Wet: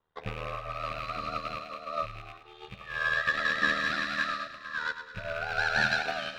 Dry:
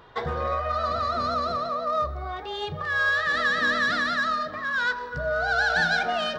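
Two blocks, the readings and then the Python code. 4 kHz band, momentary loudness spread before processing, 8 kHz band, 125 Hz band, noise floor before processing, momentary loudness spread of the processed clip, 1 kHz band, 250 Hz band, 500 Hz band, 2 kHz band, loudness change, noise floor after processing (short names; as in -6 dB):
-5.0 dB, 8 LU, -4.0 dB, -6.5 dB, -37 dBFS, 13 LU, -8.0 dB, -6.5 dB, -9.5 dB, -5.0 dB, -5.5 dB, -51 dBFS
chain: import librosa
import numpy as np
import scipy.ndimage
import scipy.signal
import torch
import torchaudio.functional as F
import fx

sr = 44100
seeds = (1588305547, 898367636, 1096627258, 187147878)

y = fx.rattle_buzz(x, sr, strikes_db=-40.0, level_db=-21.0)
y = y + 10.0 ** (-20.5 / 20.0) * np.pad(y, (int(380 * sr / 1000.0), 0))[:len(y)]
y = y * np.sin(2.0 * np.pi * 39.0 * np.arange(len(y)) / sr)
y = fx.low_shelf(y, sr, hz=210.0, db=4.0)
y = fx.echo_wet_highpass(y, sr, ms=105, feedback_pct=81, hz=1600.0, wet_db=-4.5)
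y = fx.upward_expand(y, sr, threshold_db=-40.0, expansion=2.5)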